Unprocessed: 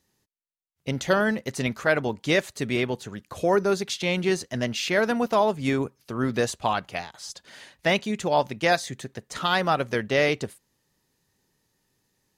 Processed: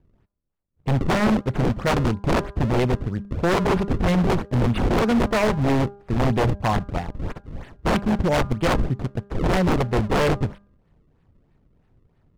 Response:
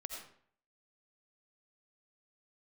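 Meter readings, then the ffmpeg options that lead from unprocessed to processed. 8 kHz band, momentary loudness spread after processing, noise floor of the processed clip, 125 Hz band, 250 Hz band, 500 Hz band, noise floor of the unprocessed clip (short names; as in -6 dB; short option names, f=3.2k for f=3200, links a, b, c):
-3.5 dB, 9 LU, -64 dBFS, +11.0 dB, +6.0 dB, +0.5 dB, -74 dBFS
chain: -af "acrusher=samples=32:mix=1:aa=0.000001:lfo=1:lforange=51.2:lforate=3.1,aemphasis=mode=reproduction:type=riaa,aeval=exprs='0.158*(abs(mod(val(0)/0.158+3,4)-2)-1)':c=same,bandreject=f=201.2:t=h:w=4,bandreject=f=402.4:t=h:w=4,bandreject=f=603.6:t=h:w=4,bandreject=f=804.8:t=h:w=4,bandreject=f=1.006k:t=h:w=4,bandreject=f=1.2072k:t=h:w=4,bandreject=f=1.4084k:t=h:w=4,bandreject=f=1.6096k:t=h:w=4,volume=2.5dB"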